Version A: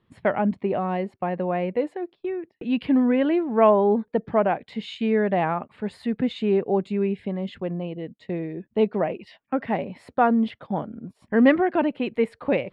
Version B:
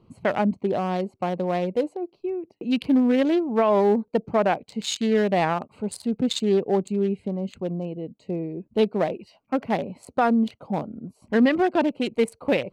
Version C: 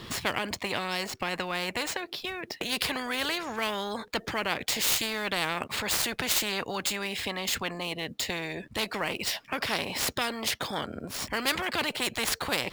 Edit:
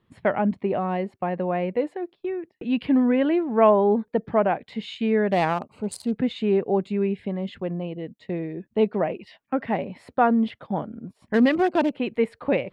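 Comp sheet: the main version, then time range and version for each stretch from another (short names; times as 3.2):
A
5.32–6.16 from B
11.34–11.93 from B
not used: C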